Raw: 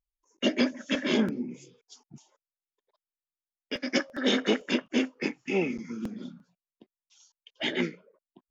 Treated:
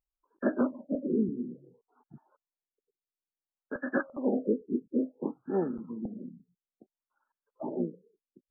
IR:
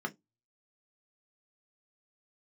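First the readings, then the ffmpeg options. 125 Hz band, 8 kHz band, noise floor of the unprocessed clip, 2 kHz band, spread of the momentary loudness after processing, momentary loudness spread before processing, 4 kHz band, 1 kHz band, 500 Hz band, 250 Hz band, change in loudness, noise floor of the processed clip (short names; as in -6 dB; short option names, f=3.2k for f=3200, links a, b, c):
-2.5 dB, n/a, under -85 dBFS, -9.5 dB, 12 LU, 12 LU, under -40 dB, -2.5 dB, -1.5 dB, -2.0 dB, -3.5 dB, under -85 dBFS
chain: -af "crystalizer=i=8:c=0,afftfilt=real='re*lt(b*sr/1024,460*pow(1800/460,0.5+0.5*sin(2*PI*0.58*pts/sr)))':imag='im*lt(b*sr/1024,460*pow(1800/460,0.5+0.5*sin(2*PI*0.58*pts/sr)))':win_size=1024:overlap=0.75,volume=-2.5dB"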